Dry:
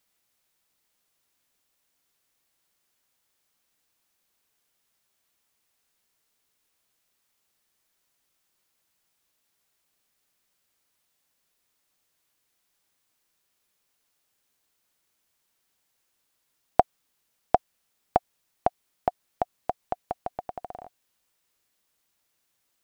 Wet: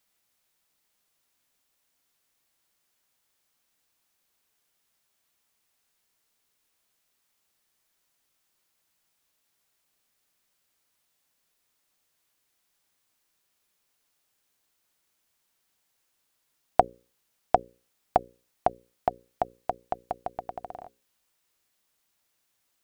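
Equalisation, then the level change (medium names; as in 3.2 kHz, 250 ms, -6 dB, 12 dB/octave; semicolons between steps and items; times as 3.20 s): hum notches 60/120/180/240/300/360/420/480/540 Hz; 0.0 dB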